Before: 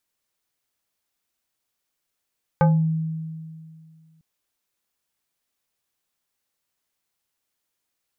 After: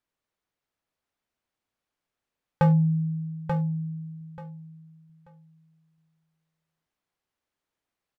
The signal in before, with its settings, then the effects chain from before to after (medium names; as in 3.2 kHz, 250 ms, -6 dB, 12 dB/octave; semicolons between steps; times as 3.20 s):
FM tone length 1.60 s, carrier 160 Hz, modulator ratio 4.3, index 1.3, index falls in 0.33 s exponential, decay 2.22 s, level -12 dB
low-pass 1.6 kHz 6 dB/octave; hard clipper -15.5 dBFS; feedback delay 885 ms, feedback 21%, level -6 dB